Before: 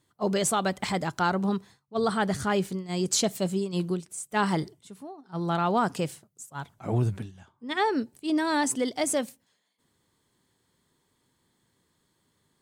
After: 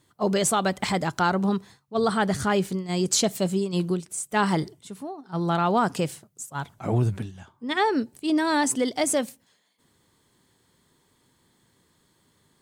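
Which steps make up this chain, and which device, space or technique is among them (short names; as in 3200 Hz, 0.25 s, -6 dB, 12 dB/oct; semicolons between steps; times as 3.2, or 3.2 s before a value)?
parallel compression (in parallel at -1 dB: compressor, threshold -35 dBFS, peak gain reduction 14 dB); on the sum: gain +1 dB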